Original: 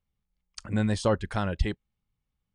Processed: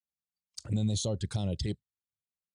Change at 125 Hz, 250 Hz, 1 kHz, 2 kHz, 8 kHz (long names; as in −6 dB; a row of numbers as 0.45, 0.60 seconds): −1.0, −4.5, −15.5, −16.0, +4.5 decibels